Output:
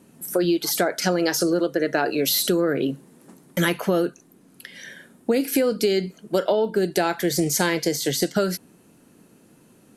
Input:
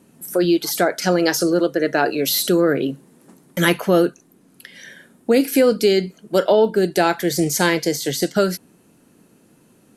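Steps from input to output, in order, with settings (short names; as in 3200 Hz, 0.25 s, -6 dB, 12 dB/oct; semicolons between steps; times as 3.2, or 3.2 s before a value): compressor, threshold -17 dBFS, peak gain reduction 7 dB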